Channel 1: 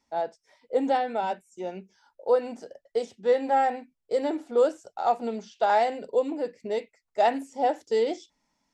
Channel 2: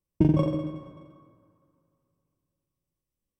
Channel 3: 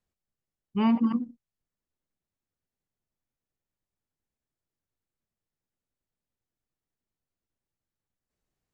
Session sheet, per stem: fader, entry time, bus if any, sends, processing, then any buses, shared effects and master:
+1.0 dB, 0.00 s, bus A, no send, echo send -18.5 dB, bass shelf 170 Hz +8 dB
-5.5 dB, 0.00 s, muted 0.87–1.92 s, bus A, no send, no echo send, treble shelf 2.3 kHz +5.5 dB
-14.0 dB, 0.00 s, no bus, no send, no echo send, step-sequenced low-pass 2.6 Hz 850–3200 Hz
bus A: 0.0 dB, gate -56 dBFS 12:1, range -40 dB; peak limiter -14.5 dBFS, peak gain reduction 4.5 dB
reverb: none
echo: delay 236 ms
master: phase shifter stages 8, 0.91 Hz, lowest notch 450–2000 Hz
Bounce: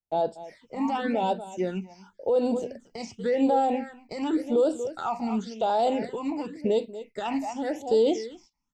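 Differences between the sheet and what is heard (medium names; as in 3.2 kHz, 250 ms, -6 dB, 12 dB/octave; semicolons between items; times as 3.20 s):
stem 1 +1.0 dB -> +8.5 dB; stem 2: muted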